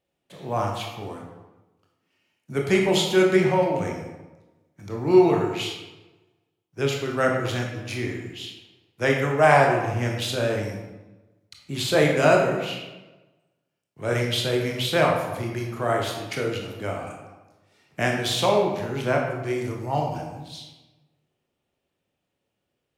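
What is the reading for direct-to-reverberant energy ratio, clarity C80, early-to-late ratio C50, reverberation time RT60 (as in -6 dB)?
-0.5 dB, 5.5 dB, 3.5 dB, 1.1 s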